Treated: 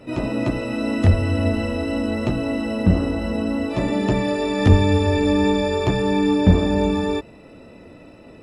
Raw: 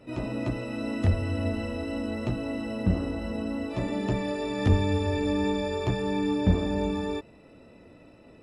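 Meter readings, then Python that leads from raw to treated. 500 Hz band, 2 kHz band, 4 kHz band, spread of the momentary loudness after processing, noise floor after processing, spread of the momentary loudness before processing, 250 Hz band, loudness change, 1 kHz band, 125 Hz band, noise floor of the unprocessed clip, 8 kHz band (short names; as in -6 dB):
+8.5 dB, +8.5 dB, +8.5 dB, 7 LU, -45 dBFS, 7 LU, +8.5 dB, +8.5 dB, +8.5 dB, +8.0 dB, -53 dBFS, +8.5 dB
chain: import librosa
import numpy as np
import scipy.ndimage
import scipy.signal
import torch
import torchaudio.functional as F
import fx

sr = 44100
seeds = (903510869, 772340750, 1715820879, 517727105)

y = fx.hum_notches(x, sr, base_hz=60, count=2)
y = F.gain(torch.from_numpy(y), 8.5).numpy()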